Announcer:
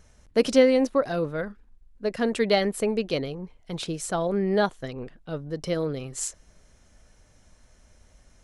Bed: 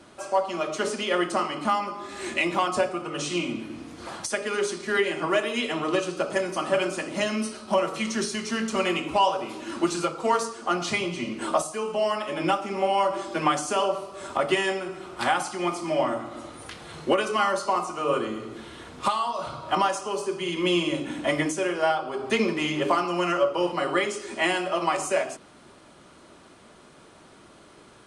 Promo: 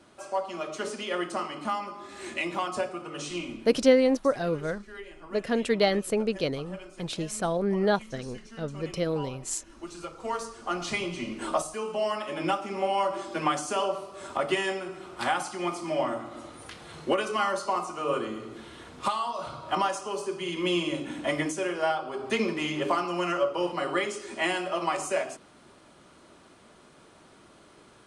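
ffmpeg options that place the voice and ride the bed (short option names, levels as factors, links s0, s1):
-filter_complex "[0:a]adelay=3300,volume=0.841[s0];[1:a]volume=3.16,afade=t=out:st=3.3:d=0.83:silence=0.211349,afade=t=in:st=9.75:d=1.26:silence=0.158489[s1];[s0][s1]amix=inputs=2:normalize=0"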